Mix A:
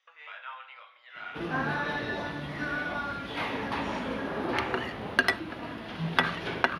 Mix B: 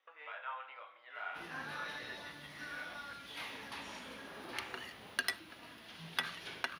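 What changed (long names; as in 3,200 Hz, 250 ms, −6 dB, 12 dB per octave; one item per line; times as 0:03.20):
speech: add spectral tilt −4 dB per octave
background: add first-order pre-emphasis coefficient 0.9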